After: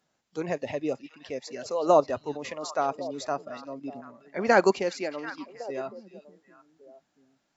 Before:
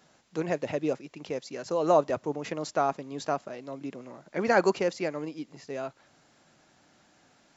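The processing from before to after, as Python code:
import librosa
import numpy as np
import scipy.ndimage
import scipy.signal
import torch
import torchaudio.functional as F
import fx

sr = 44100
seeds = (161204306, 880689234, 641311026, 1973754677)

p1 = fx.noise_reduce_blind(x, sr, reduce_db=13)
p2 = fx.level_steps(p1, sr, step_db=23)
p3 = p1 + (p2 * librosa.db_to_amplitude(-1.0))
p4 = fx.echo_stepped(p3, sr, ms=369, hz=3700.0, octaves=-1.4, feedback_pct=70, wet_db=-9.5)
y = p4 * librosa.db_to_amplitude(-1.5)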